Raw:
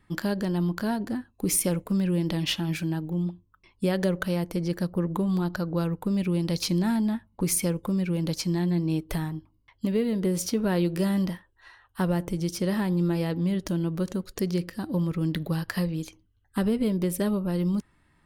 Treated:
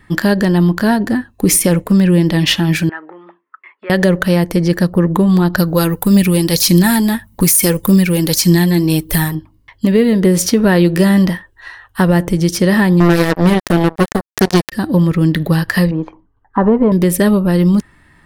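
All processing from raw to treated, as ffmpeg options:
-filter_complex "[0:a]asettb=1/sr,asplit=3[a][b][c];[a]atrim=end=2.894[d];[b]atrim=start=2.89:end=3.9,asetpts=PTS-STARTPTS,afade=t=in:d=0.004:c=qsin,afade=t=out:st=1.006:d=0.004:c=qsin,acompressor=threshold=-29dB:ratio=6:attack=3.2:release=140:knee=1:detection=peak,highpass=f=470:w=0.5412,highpass=f=470:w=1.3066,equalizer=f=510:t=q:w=4:g=-8,equalizer=f=730:t=q:w=4:g=-5,equalizer=f=1.3k:t=q:w=4:g=9,equalizer=f=2k:t=q:w=4:g=8,lowpass=f=2.3k:w=0.5412,lowpass=f=2.3k:w=1.3066[e];[c]atrim=start=3.896[f];[d][e]acrossfade=d=0.004:c1=hsin:c2=qsin[g];[g][f]acrossfade=d=0.004:c1=qsin:c2=hsin,asettb=1/sr,asplit=3[h][i][j];[h]atrim=end=5.584[k];[i]atrim=start=5.58:end=9.35,asetpts=PTS-STARTPTS,afade=t=in:d=0.004:c=qsin,afade=t=out:st=3.766:d=0.004:c=qsin,aemphasis=mode=production:type=75fm,aphaser=in_gain=1:out_gain=1:delay=3:decay=0.36:speed=1.7:type=triangular[l];[j]atrim=start=9.346[m];[k][l]acrossfade=d=0.004:c1=hsin:c2=qsin[n];[n][m]acrossfade=d=0.004:c1=qsin:c2=hsin,asettb=1/sr,asplit=3[o][p][q];[o]atrim=end=13.004[r];[p]atrim=start=13:end=14.72,asetpts=PTS-STARTPTS,afade=t=in:d=0.004:c=qsin,afade=t=out:st=1.716:d=0.004:c=qsin,highpass=45,acrusher=bits=3:mix=0:aa=0.5[s];[q]atrim=start=14.716[t];[r][s]acrossfade=d=0.004:c1=hsin:c2=qsin[u];[u][t]acrossfade=d=0.004:c1=qsin:c2=hsin,asettb=1/sr,asplit=3[v][w][x];[v]atrim=end=15.914[y];[w]atrim=start=15.91:end=16.92,asetpts=PTS-STARTPTS,afade=t=in:d=0.004:c=qsin,afade=t=out:st=1.006:d=0.004:c=qsin,lowpass=f=980:t=q:w=3.8,equalizer=f=75:t=o:w=1.5:g=-13.5[z];[x]atrim=start=16.916[aa];[y][z]acrossfade=d=0.004:c1=hsin:c2=qsin[ab];[ab][aa]acrossfade=d=0.004:c1=qsin:c2=hsin,equalizer=f=1.8k:t=o:w=0.23:g=7.5,alimiter=level_in=15.5dB:limit=-1dB:release=50:level=0:latency=1,volume=-1dB"

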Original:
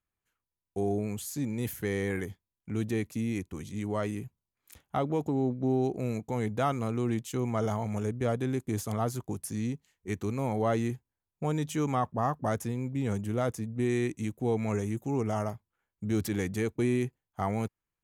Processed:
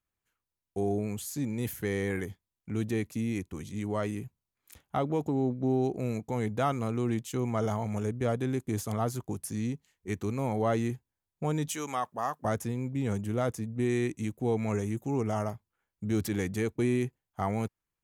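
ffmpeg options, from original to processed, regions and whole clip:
-filter_complex "[0:a]asettb=1/sr,asplit=3[a][b][c];[a]atrim=end=11.684[d];[b]atrim=start=11.68:end=12.45,asetpts=PTS-STARTPTS,afade=t=in:d=0.004:c=qsin,afade=t=out:st=0.766:d=0.004:c=qsin,highpass=f=750:p=1,highshelf=f=3.6k:g=7[e];[c]atrim=start=12.446[f];[d][e]acrossfade=d=0.004:c1=hsin:c2=qsin[g];[g][f]acrossfade=d=0.004:c1=qsin:c2=hsin"

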